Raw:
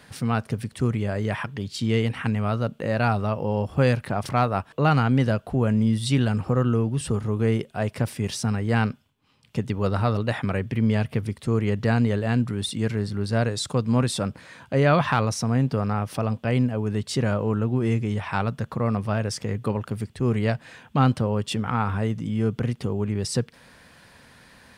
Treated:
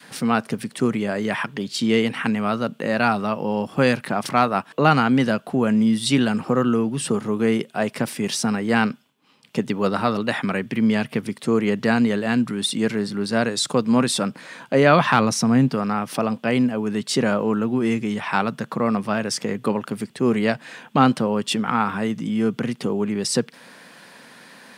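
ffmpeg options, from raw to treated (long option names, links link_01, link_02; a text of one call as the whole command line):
ffmpeg -i in.wav -filter_complex "[0:a]asettb=1/sr,asplit=3[link_01][link_02][link_03];[link_01]atrim=end=15.134[link_04];[link_02]atrim=start=15.13:end=15.68,asetpts=PTS-STARTPTS,afade=type=in:duration=0.004:curve=qsin,afade=type=out:start_time=0.546:duration=0.004:curve=qsin,lowshelf=frequency=250:gain=7.5[link_05];[link_03]atrim=start=15.676[link_06];[link_04][link_05]acrossfade=duration=0.004:curve1=hsin:curve2=qsin[link_07];[link_07][link_06]acrossfade=duration=0.004:curve1=qsin:curve2=hsin,highpass=frequency=180:width=0.5412,highpass=frequency=180:width=1.3066,adynamicequalizer=threshold=0.0126:dfrequency=530:dqfactor=1:tfrequency=530:tqfactor=1:attack=5:release=100:ratio=0.375:range=3:mode=cutabove:tftype=bell,volume=6.5dB" out.wav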